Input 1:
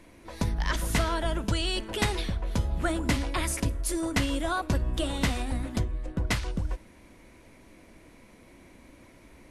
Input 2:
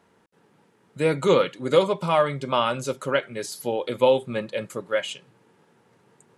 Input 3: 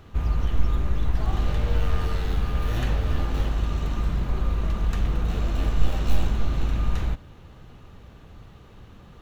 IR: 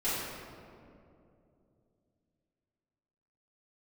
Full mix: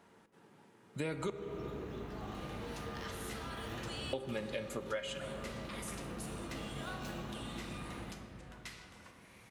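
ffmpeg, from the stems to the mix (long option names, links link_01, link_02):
-filter_complex "[0:a]highpass=1300,alimiter=limit=-23dB:level=0:latency=1:release=209,acompressor=mode=upward:threshold=-39dB:ratio=2.5,adelay=2350,volume=-14dB,asplit=2[link_01][link_02];[link_02]volume=-9dB[link_03];[1:a]bandreject=frequency=490:width=15,volume=-2dB,asplit=3[link_04][link_05][link_06];[link_04]atrim=end=1.3,asetpts=PTS-STARTPTS,afade=type=out:start_time=1.296:duration=0.004:curve=hsin[link_07];[link_05]atrim=start=1.3:end=4.13,asetpts=PTS-STARTPTS,volume=0[link_08];[link_06]atrim=start=4.13,asetpts=PTS-STARTPTS,afade=type=in:duration=0.004:curve=hsin[link_09];[link_07][link_08][link_09]concat=n=3:v=0:a=1,asplit=2[link_10][link_11];[link_11]volume=-18.5dB[link_12];[2:a]highpass=140,adelay=950,volume=-14dB,asplit=2[link_13][link_14];[link_14]volume=-9.5dB[link_15];[3:a]atrim=start_sample=2205[link_16];[link_03][link_12][link_15]amix=inputs=3:normalize=0[link_17];[link_17][link_16]afir=irnorm=-1:irlink=0[link_18];[link_01][link_10][link_13][link_18]amix=inputs=4:normalize=0,acompressor=threshold=-37dB:ratio=4"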